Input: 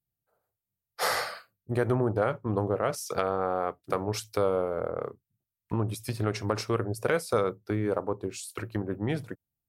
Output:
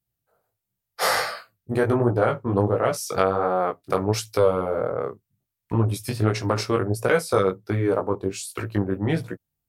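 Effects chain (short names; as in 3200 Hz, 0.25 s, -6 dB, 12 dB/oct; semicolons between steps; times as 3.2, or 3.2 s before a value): chorus 1.4 Hz, delay 16.5 ms, depth 4.7 ms; gain +9 dB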